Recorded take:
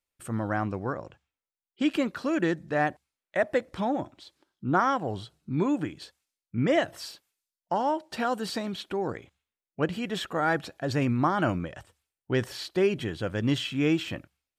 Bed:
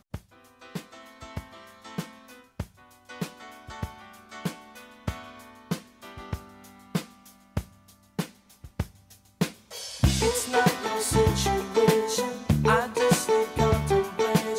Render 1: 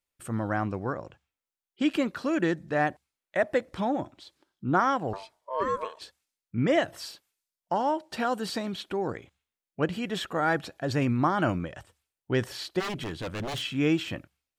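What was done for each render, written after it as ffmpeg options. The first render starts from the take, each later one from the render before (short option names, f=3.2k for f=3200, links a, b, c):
-filter_complex "[0:a]asettb=1/sr,asplit=3[a][b][c];[a]atrim=end=5.134[d];[b]atrim=start=5.13:end=6.01,asetpts=PTS-STARTPTS,afade=t=in:d=0.004:c=qsin,afade=t=out:st=0.876:d=0.004:c=qsin,aeval=exprs='val(0)*sin(2*PI*780*n/s)':c=same[e];[c]atrim=start=6.006[f];[d][e]acrossfade=d=0.004:c1=hsin:c2=qsin[g];[g][f]acrossfade=d=0.004:c1=qsin:c2=hsin,asplit=3[h][i][j];[h]afade=t=out:st=12.79:d=0.02[k];[i]aeval=exprs='0.0422*(abs(mod(val(0)/0.0422+3,4)-2)-1)':c=same,afade=t=in:st=12.79:d=0.02,afade=t=out:st=13.61:d=0.02[l];[j]afade=t=in:st=13.61:d=0.02[m];[k][l][m]amix=inputs=3:normalize=0"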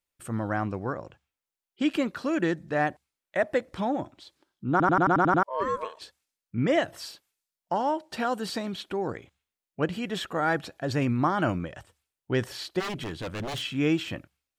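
-filter_complex "[0:a]asplit=9[a][b][c][d][e][f][g][h][i];[a]atrim=end=4.802[j];[b]atrim=start=4.708:end=4.802[k];[c]atrim=start=4.708:end=4.802[l];[d]atrim=start=4.708:end=4.802[m];[e]atrim=start=4.708:end=4.802[n];[f]atrim=start=4.708:end=4.802[o];[g]atrim=start=4.708:end=4.802[p];[h]atrim=start=4.708:end=4.802[q];[i]atrim=start=5.428[r];[j][k]acrossfade=d=0.004:c1=hsin:c2=hsin[s];[s][l]acrossfade=d=0.004:c1=hsin:c2=hsin[t];[t][m]acrossfade=d=0.004:c1=hsin:c2=hsin[u];[u][n]acrossfade=d=0.004:c1=hsin:c2=hsin[v];[v][o]acrossfade=d=0.004:c1=hsin:c2=hsin[w];[w][p]acrossfade=d=0.004:c1=hsin:c2=hsin[x];[x][q]acrossfade=d=0.004:c1=hsin:c2=hsin[y];[y][r]acrossfade=d=0.004:c1=hsin:c2=hsin"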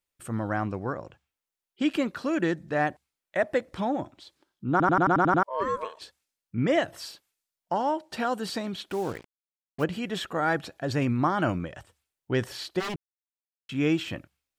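-filter_complex "[0:a]asettb=1/sr,asplit=3[a][b][c];[a]atrim=end=8.904[d];[b]atrim=start=8.9:end=9.84,asetpts=PTS-STARTPTS,afade=t=in:d=0.004:c=qsin,afade=t=out:st=0.936:d=0.004:c=qsin,acrusher=bits=6:mix=0:aa=0.5[e];[c]atrim=start=9.836[f];[d][e]acrossfade=d=0.004:c1=hsin:c2=qsin[g];[g][f]acrossfade=d=0.004:c1=qsin:c2=hsin,asplit=3[h][i][j];[h]atrim=end=12.96,asetpts=PTS-STARTPTS,afade=t=out:st=12.956:d=0.004:c=hsin[k];[i]atrim=start=12.96:end=13.69,asetpts=PTS-STARTPTS,volume=0[l];[j]atrim=start=13.69,asetpts=PTS-STARTPTS,afade=t=in:d=0.004:c=hsin[m];[k][l][m]concat=n=3:v=0:a=1"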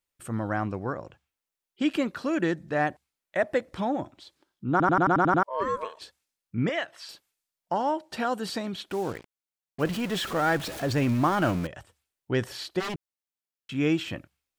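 -filter_complex "[0:a]asettb=1/sr,asplit=3[a][b][c];[a]atrim=end=6.694[d];[b]atrim=start=6.69:end=7.09,asetpts=PTS-STARTPTS,afade=t=in:d=0.004:c=qsin,afade=t=out:st=0.396:d=0.004:c=qsin,bandpass=f=2.2k:t=q:w=0.63[e];[c]atrim=start=7.086[f];[d][e]acrossfade=d=0.004:c1=hsin:c2=qsin[g];[g][f]acrossfade=d=0.004:c1=qsin:c2=hsin,asettb=1/sr,asplit=3[h][i][j];[h]atrim=end=9.854[k];[i]atrim=start=9.85:end=11.67,asetpts=PTS-STARTPTS,afade=t=in:d=0.004:c=qsin,afade=t=out:st=1.816:d=0.004:c=qsin,aeval=exprs='val(0)+0.5*0.0237*sgn(val(0))':c=same[l];[j]atrim=start=11.666[m];[k][l]acrossfade=d=0.004:c1=hsin:c2=qsin[n];[n][m]acrossfade=d=0.004:c1=qsin:c2=hsin"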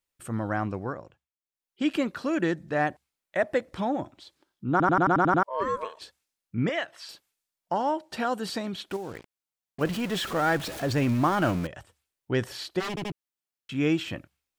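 -filter_complex "[0:a]asettb=1/sr,asplit=3[a][b][c];[a]atrim=end=8.964[d];[b]atrim=start=8.96:end=9.81,asetpts=PTS-STARTPTS,afade=t=in:d=0.004:c=qsin,afade=t=out:st=0.846:d=0.004:c=qsin,acompressor=threshold=-32dB:ratio=4:attack=3.2:release=140:knee=1:detection=peak[e];[c]atrim=start=9.806[f];[d][e]acrossfade=d=0.004:c1=hsin:c2=qsin[g];[g][f]acrossfade=d=0.004:c1=qsin:c2=hsin,asplit=6[h][i][j][k][l][m];[h]atrim=end=1.28,asetpts=PTS-STARTPTS,afade=t=out:st=0.79:d=0.49:silence=0.133352[n];[i]atrim=start=1.28:end=1.4,asetpts=PTS-STARTPTS,volume=-17.5dB[o];[j]atrim=start=1.4:end=12.972,asetpts=PTS-STARTPTS,afade=t=in:d=0.49:silence=0.133352[p];[k]atrim=start=12.888:end=12.972[q];[l]atrim=start=12.888:end=12.972[r];[m]atrim=start=13.128[s];[n][o][p]concat=n=3:v=0:a=1[t];[t][q]acrossfade=d=0.004:c1=hsin:c2=hsin[u];[u][r]acrossfade=d=0.004:c1=hsin:c2=hsin[v];[v][s]acrossfade=d=0.004:c1=hsin:c2=hsin"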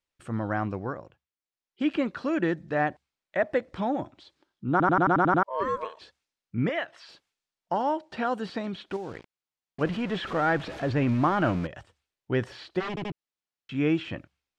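-filter_complex "[0:a]lowpass=5.7k,acrossover=split=3200[a][b];[b]acompressor=threshold=-52dB:ratio=4:attack=1:release=60[c];[a][c]amix=inputs=2:normalize=0"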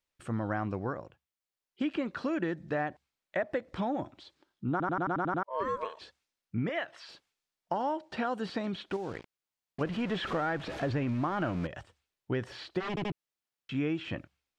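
-af "acompressor=threshold=-28dB:ratio=6"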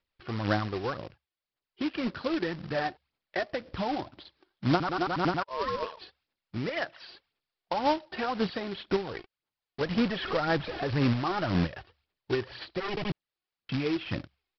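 -af "aphaser=in_gain=1:out_gain=1:delay=2.8:decay=0.57:speed=1.9:type=sinusoidal,aresample=11025,acrusher=bits=2:mode=log:mix=0:aa=0.000001,aresample=44100"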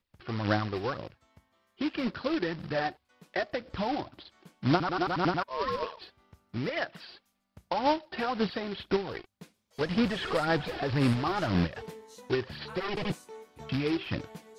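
-filter_complex "[1:a]volume=-23.5dB[a];[0:a][a]amix=inputs=2:normalize=0"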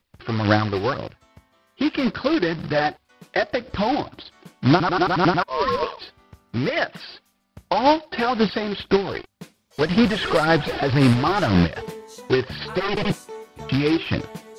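-af "volume=9.5dB,alimiter=limit=-2dB:level=0:latency=1"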